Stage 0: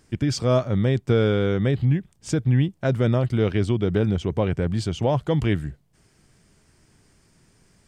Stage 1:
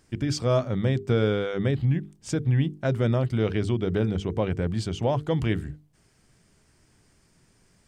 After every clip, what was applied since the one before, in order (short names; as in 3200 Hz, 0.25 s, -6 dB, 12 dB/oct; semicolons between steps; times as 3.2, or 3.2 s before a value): notches 50/100/150/200/250/300/350/400/450 Hz; gain -2.5 dB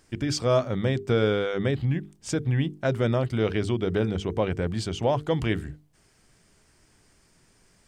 bell 130 Hz -5 dB 2.3 oct; gain +2.5 dB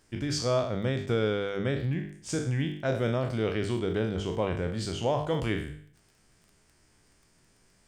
spectral trails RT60 0.58 s; crackle 13/s -41 dBFS; gain -5 dB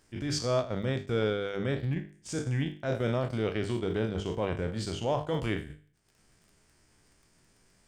transient shaper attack -6 dB, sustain -10 dB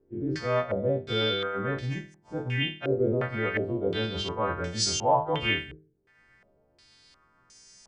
frequency quantiser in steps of 2 st; stepped low-pass 2.8 Hz 400–6000 Hz